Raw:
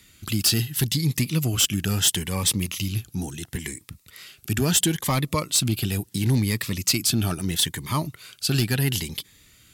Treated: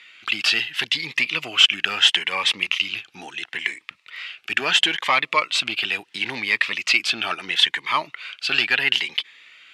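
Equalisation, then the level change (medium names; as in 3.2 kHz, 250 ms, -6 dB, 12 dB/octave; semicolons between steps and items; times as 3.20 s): high-pass 800 Hz 12 dB/octave; resonant low-pass 2.6 kHz, resonance Q 2.3; +7.5 dB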